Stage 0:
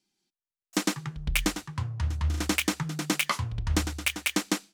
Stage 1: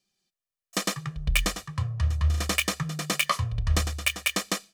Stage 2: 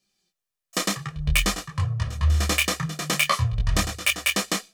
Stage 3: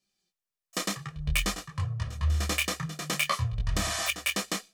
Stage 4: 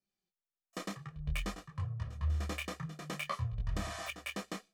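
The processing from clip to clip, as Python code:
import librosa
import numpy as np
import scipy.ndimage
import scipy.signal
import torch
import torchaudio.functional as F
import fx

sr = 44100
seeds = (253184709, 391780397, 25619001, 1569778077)

y1 = x + 0.7 * np.pad(x, (int(1.7 * sr / 1000.0), 0))[:len(x)]
y2 = fx.detune_double(y1, sr, cents=18)
y2 = y2 * librosa.db_to_amplitude(7.5)
y3 = fx.spec_repair(y2, sr, seeds[0], start_s=3.81, length_s=0.25, low_hz=620.0, high_hz=12000.0, source='before')
y3 = y3 * librosa.db_to_amplitude(-6.0)
y4 = fx.high_shelf(y3, sr, hz=2500.0, db=-11.5)
y4 = y4 * librosa.db_to_amplitude(-6.5)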